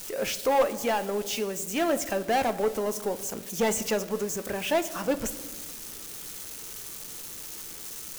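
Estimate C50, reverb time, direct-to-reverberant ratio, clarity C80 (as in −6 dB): 15.5 dB, 1.4 s, 11.0 dB, 17.0 dB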